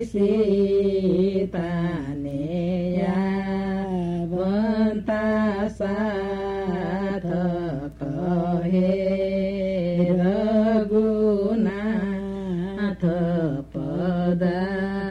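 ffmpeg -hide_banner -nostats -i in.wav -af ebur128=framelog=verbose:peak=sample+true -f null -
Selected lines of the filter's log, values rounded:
Integrated loudness:
  I:         -23.6 LUFS
  Threshold: -33.6 LUFS
Loudness range:
  LRA:         3.5 LU
  Threshold: -43.7 LUFS
  LRA low:   -25.4 LUFS
  LRA high:  -21.9 LUFS
Sample peak:
  Peak:       -9.7 dBFS
True peak:
  Peak:       -9.7 dBFS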